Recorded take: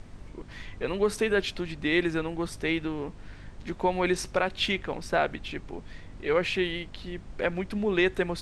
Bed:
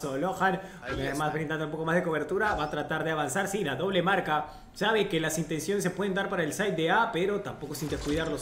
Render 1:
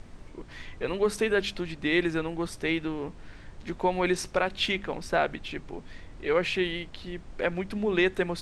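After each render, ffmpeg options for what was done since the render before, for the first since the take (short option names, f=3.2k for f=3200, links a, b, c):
-af "bandreject=f=50:t=h:w=4,bandreject=f=100:t=h:w=4,bandreject=f=150:t=h:w=4,bandreject=f=200:t=h:w=4,bandreject=f=250:t=h:w=4"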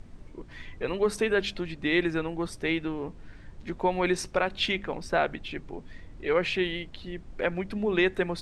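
-af "afftdn=nr=6:nf=-48"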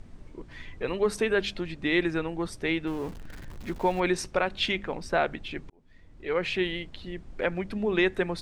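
-filter_complex "[0:a]asettb=1/sr,asplit=3[a][b][c];[a]atrim=end=2.874[d];[b]atrim=start=2.87:end=4,asetpts=PTS-STARTPTS,afade=t=in:d=0.004:c=qsin,afade=t=out:st=1.126:d=0.004:c=qsin,aeval=exprs='val(0)+0.5*0.00891*sgn(val(0))':c=same[e];[c]atrim=start=3.996[f];[d][e]acrossfade=d=0.004:c1=hsin:c2=qsin[g];[g][f]acrossfade=d=0.004:c1=qsin:c2=hsin,asplit=2[h][i];[h]atrim=end=5.7,asetpts=PTS-STARTPTS,afade=t=out:st=5.696:d=0.004:c=hsin[j];[i]atrim=start=5.7,asetpts=PTS-STARTPTS,afade=t=in:d=0.91[k];[j][k]concat=n=2:v=0:a=1"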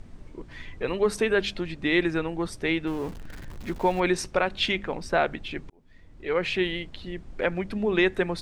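-af "volume=2dB"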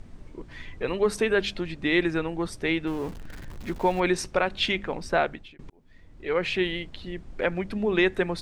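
-filter_complex "[0:a]asplit=2[a][b];[a]atrim=end=5.59,asetpts=PTS-STARTPTS,afade=t=out:st=5.19:d=0.4[c];[b]atrim=start=5.59,asetpts=PTS-STARTPTS,afade=t=in:d=0.004:c=hsin[d];[c][d]concat=n=2:v=0:a=1"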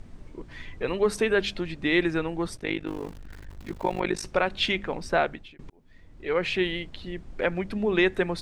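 -filter_complex "[0:a]asettb=1/sr,asplit=3[a][b][c];[a]atrim=end=2.574[d];[b]atrim=start=2.57:end=4.24,asetpts=PTS-STARTPTS,afade=t=in:d=0.004:c=qsin,afade=t=out:st=1.666:d=0.004:c=qsin,tremolo=f=50:d=0.947[e];[c]atrim=start=4.236[f];[d][e]acrossfade=d=0.004:c1=hsin:c2=qsin[g];[g][f]acrossfade=d=0.004:c1=qsin:c2=hsin"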